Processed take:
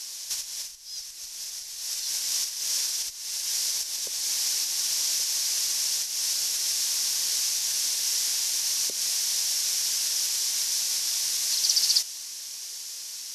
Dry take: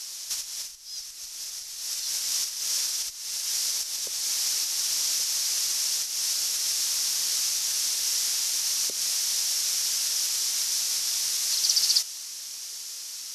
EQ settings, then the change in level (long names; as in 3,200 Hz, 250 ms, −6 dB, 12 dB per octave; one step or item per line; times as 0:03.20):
notch filter 1,300 Hz, Q 9.7
0.0 dB